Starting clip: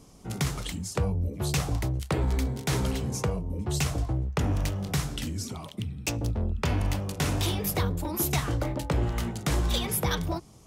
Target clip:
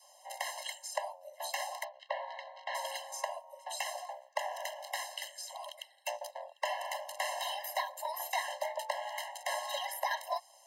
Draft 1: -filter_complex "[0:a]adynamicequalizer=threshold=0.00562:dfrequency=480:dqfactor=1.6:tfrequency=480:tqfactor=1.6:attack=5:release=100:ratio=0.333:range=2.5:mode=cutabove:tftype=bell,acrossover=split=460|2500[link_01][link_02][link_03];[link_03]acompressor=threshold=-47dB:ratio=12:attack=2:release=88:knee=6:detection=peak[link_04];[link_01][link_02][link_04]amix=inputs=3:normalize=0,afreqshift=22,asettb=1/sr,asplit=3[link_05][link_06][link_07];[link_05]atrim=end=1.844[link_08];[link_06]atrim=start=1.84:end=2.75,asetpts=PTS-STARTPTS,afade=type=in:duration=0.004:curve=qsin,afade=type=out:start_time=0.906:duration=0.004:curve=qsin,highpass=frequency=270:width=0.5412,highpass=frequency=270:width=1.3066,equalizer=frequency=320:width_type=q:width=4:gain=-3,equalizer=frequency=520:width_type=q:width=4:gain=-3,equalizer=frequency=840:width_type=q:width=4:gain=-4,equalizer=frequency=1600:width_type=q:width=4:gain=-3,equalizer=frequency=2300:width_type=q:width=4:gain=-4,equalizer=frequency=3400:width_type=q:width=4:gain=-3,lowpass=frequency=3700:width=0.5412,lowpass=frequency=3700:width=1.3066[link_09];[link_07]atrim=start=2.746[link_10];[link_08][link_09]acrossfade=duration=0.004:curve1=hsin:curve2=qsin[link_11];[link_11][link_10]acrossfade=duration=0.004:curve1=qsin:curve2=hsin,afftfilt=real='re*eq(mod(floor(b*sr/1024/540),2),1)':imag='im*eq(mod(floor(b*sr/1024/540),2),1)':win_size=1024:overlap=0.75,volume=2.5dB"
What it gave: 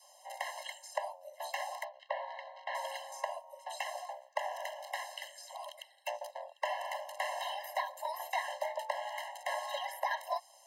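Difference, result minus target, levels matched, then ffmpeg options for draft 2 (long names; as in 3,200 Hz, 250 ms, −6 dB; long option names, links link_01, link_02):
downward compressor: peak gain reduction +8.5 dB
-filter_complex "[0:a]adynamicequalizer=threshold=0.00562:dfrequency=480:dqfactor=1.6:tfrequency=480:tqfactor=1.6:attack=5:release=100:ratio=0.333:range=2.5:mode=cutabove:tftype=bell,acrossover=split=460|2500[link_01][link_02][link_03];[link_03]acompressor=threshold=-37.5dB:ratio=12:attack=2:release=88:knee=6:detection=peak[link_04];[link_01][link_02][link_04]amix=inputs=3:normalize=0,afreqshift=22,asettb=1/sr,asplit=3[link_05][link_06][link_07];[link_05]atrim=end=1.844[link_08];[link_06]atrim=start=1.84:end=2.75,asetpts=PTS-STARTPTS,afade=type=in:duration=0.004:curve=qsin,afade=type=out:start_time=0.906:duration=0.004:curve=qsin,highpass=frequency=270:width=0.5412,highpass=frequency=270:width=1.3066,equalizer=frequency=320:width_type=q:width=4:gain=-3,equalizer=frequency=520:width_type=q:width=4:gain=-3,equalizer=frequency=840:width_type=q:width=4:gain=-4,equalizer=frequency=1600:width_type=q:width=4:gain=-3,equalizer=frequency=2300:width_type=q:width=4:gain=-4,equalizer=frequency=3400:width_type=q:width=4:gain=-3,lowpass=frequency=3700:width=0.5412,lowpass=frequency=3700:width=1.3066[link_09];[link_07]atrim=start=2.746[link_10];[link_08][link_09]acrossfade=duration=0.004:curve1=hsin:curve2=qsin[link_11];[link_11][link_10]acrossfade=duration=0.004:curve1=qsin:curve2=hsin,afftfilt=real='re*eq(mod(floor(b*sr/1024/540),2),1)':imag='im*eq(mod(floor(b*sr/1024/540),2),1)':win_size=1024:overlap=0.75,volume=2.5dB"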